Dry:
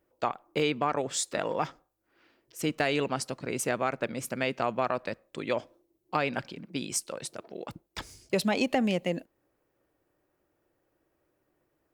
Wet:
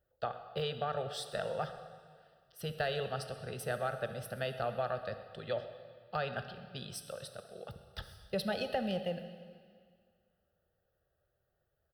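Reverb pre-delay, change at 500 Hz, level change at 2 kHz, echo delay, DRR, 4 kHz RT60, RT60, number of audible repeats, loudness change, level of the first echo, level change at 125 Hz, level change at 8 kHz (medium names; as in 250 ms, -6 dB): 5 ms, -5.5 dB, -8.0 dB, 130 ms, 8.0 dB, 1.9 s, 2.0 s, 1, -7.5 dB, -19.5 dB, -3.5 dB, -15.5 dB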